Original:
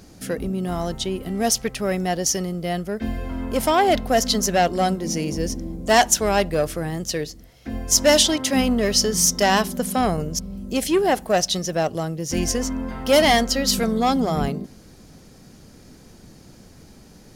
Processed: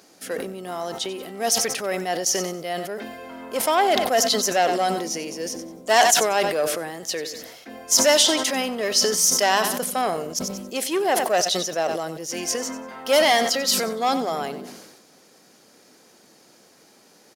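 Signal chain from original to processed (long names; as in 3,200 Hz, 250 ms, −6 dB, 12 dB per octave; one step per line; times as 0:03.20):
high-pass filter 430 Hz 12 dB per octave
repeating echo 93 ms, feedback 31%, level −16 dB
level that may fall only so fast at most 45 dB per second
level −1 dB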